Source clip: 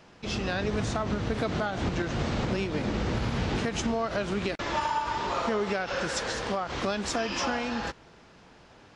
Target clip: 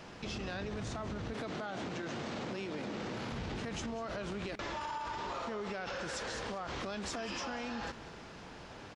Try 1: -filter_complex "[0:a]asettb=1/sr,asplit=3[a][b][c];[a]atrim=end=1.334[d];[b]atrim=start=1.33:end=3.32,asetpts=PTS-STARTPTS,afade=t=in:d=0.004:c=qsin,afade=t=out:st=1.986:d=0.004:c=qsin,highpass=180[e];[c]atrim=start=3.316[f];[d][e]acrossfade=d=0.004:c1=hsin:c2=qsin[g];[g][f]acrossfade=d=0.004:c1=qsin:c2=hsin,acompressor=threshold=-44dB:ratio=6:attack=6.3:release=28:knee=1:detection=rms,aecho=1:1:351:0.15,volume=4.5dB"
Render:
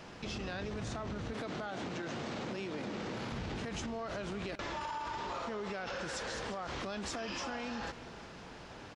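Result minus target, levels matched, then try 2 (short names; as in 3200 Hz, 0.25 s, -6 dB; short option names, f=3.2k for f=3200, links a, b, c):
echo 0.159 s late
-filter_complex "[0:a]asettb=1/sr,asplit=3[a][b][c];[a]atrim=end=1.334[d];[b]atrim=start=1.33:end=3.32,asetpts=PTS-STARTPTS,afade=t=in:d=0.004:c=qsin,afade=t=out:st=1.986:d=0.004:c=qsin,highpass=180[e];[c]atrim=start=3.316[f];[d][e]acrossfade=d=0.004:c1=hsin:c2=qsin[g];[g][f]acrossfade=d=0.004:c1=qsin:c2=hsin,acompressor=threshold=-44dB:ratio=6:attack=6.3:release=28:knee=1:detection=rms,aecho=1:1:192:0.15,volume=4.5dB"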